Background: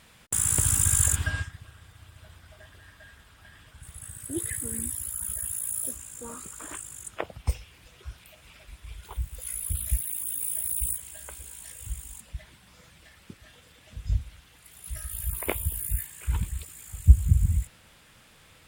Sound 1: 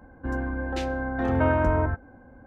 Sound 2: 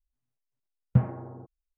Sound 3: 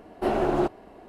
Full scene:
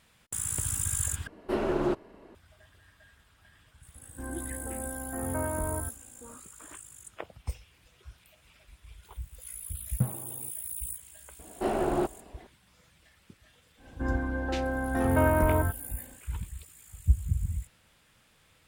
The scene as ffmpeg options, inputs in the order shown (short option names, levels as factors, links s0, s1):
-filter_complex "[3:a]asplit=2[s0][s1];[1:a]asplit=2[s2][s3];[0:a]volume=0.398[s4];[s0]equalizer=f=740:w=6.4:g=-12[s5];[s2]asuperstop=centerf=4500:order=4:qfactor=0.67[s6];[s4]asplit=2[s7][s8];[s7]atrim=end=1.274[s9];[s5]atrim=end=1.08,asetpts=PTS-STARTPTS,volume=0.708[s10];[s8]atrim=start=2.346[s11];[s6]atrim=end=2.46,asetpts=PTS-STARTPTS,volume=0.316,afade=t=in:d=0.004:c=hsin,afade=t=out:st=2.456:d=0.004:c=hsin,adelay=3940[s12];[2:a]atrim=end=1.77,asetpts=PTS-STARTPTS,volume=0.473,afade=t=in:d=0.004:c=hsin,afade=t=out:st=1.766:d=0.004:c=hsin,adelay=9050[s13];[s1]atrim=end=1.08,asetpts=PTS-STARTPTS,volume=0.631,afade=t=in:d=0.004:c=hsin,afade=t=out:st=1.076:d=0.004:c=hsin,adelay=11390[s14];[s3]atrim=end=2.46,asetpts=PTS-STARTPTS,volume=0.841,afade=t=in:d=0.1,afade=t=out:st=2.36:d=0.1,adelay=13760[s15];[s9][s10]acrossfade=d=0.004:c1=hsin:c2=hsin[s16];[s16][s11]acrossfade=d=0.004:c1=hsin:c2=hsin[s17];[s17][s12][s13][s14][s15]amix=inputs=5:normalize=0"